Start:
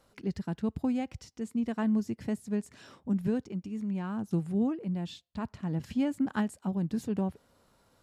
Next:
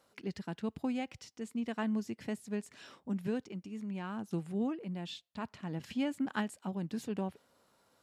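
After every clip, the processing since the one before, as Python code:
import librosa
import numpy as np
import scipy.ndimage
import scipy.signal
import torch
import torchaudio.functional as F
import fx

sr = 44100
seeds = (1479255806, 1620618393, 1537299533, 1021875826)

y = fx.highpass(x, sr, hz=280.0, slope=6)
y = fx.dynamic_eq(y, sr, hz=2800.0, q=0.99, threshold_db=-59.0, ratio=4.0, max_db=5)
y = y * 10.0 ** (-2.0 / 20.0)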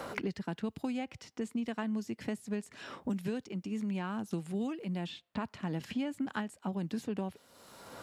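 y = fx.band_squash(x, sr, depth_pct=100)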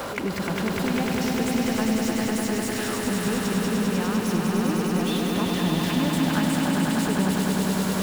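y = x + 0.5 * 10.0 ** (-37.0 / 20.0) * np.sign(x)
y = fx.echo_swell(y, sr, ms=100, loudest=5, wet_db=-4.5)
y = y * 10.0 ** (5.0 / 20.0)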